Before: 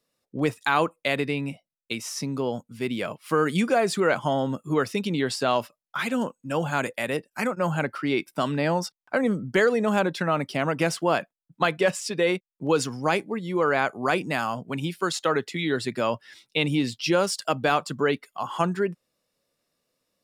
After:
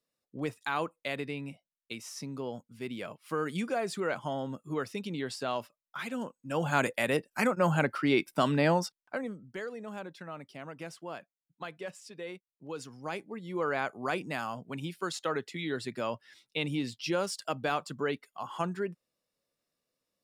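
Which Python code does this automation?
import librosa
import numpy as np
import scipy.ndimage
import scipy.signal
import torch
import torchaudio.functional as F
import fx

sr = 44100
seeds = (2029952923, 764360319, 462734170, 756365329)

y = fx.gain(x, sr, db=fx.line((6.33, -10.0), (6.77, -1.0), (8.7, -1.0), (9.2, -11.5), (9.38, -18.5), (12.67, -18.5), (13.6, -8.5)))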